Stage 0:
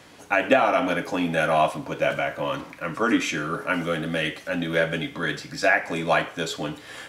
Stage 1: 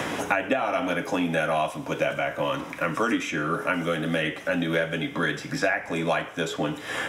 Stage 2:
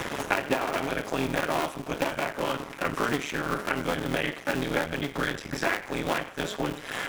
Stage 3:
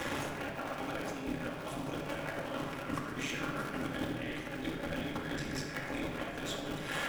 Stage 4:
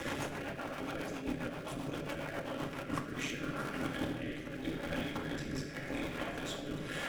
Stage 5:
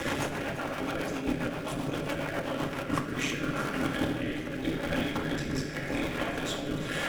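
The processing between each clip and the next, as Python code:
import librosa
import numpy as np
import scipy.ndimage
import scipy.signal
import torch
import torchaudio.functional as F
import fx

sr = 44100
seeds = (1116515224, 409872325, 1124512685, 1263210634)

y1 = fx.notch(x, sr, hz=4400.0, q=5.0)
y1 = fx.band_squash(y1, sr, depth_pct=100)
y1 = F.gain(torch.from_numpy(y1), -3.0).numpy()
y2 = fx.cycle_switch(y1, sr, every=2, mode='muted')
y3 = fx.over_compress(y2, sr, threshold_db=-32.0, ratio=-0.5)
y3 = fx.room_shoebox(y3, sr, seeds[0], volume_m3=2500.0, walls='mixed', distance_m=2.3)
y3 = F.gain(torch.from_numpy(y3), -9.0).numpy()
y4 = fx.rotary_switch(y3, sr, hz=7.5, then_hz=0.85, switch_at_s=2.58)
y4 = F.gain(torch.from_numpy(y4), 1.0).numpy()
y5 = y4 + 10.0 ** (-14.5 / 20.0) * np.pad(y4, (int(343 * sr / 1000.0), 0))[:len(y4)]
y5 = F.gain(torch.from_numpy(y5), 7.0).numpy()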